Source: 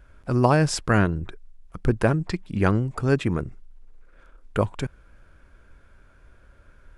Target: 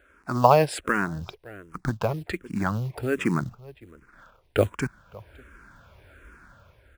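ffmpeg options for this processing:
-filter_complex "[0:a]asubboost=boost=3.5:cutoff=210,dynaudnorm=f=140:g=7:m=7dB,highpass=67,bass=f=250:g=-13,treble=f=4k:g=-5,asplit=2[a][b];[b]adelay=559.8,volume=-23dB,highshelf=f=4k:g=-12.6[c];[a][c]amix=inputs=2:normalize=0,acrusher=bits=6:mode=log:mix=0:aa=0.000001,asplit=3[d][e][f];[d]afade=t=out:st=0.64:d=0.02[g];[e]acompressor=threshold=-26dB:ratio=2.5,afade=t=in:st=0.64:d=0.02,afade=t=out:st=3.17:d=0.02[h];[f]afade=t=in:st=3.17:d=0.02[i];[g][h][i]amix=inputs=3:normalize=0,asplit=2[j][k];[k]afreqshift=-1.3[l];[j][l]amix=inputs=2:normalize=1,volume=4.5dB"

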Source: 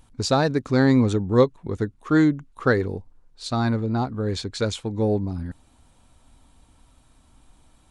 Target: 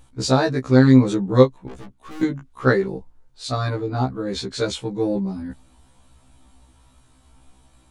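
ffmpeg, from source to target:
-filter_complex "[0:a]asettb=1/sr,asplit=3[a][b][c];[a]atrim=end=1.684[d];[b]atrim=start=1.68:end=2.23,asetpts=PTS-STARTPTS,afade=t=in:d=0.004:c=qsin,afade=t=out:st=0.546:d=0.004:c=qsin,aeval=exprs='(tanh(79.4*val(0)+0.55)-tanh(0.55))/79.4':c=same[e];[c]atrim=start=2.226[f];[d][e]acrossfade=d=0.004:c1=hsin:c2=qsin[g];[g][f]acrossfade=d=0.004:c1=qsin:c2=hsin,afftfilt=real='re*1.73*eq(mod(b,3),0)':imag='im*1.73*eq(mod(b,3),0)':win_size=2048:overlap=0.75,volume=4.5dB"

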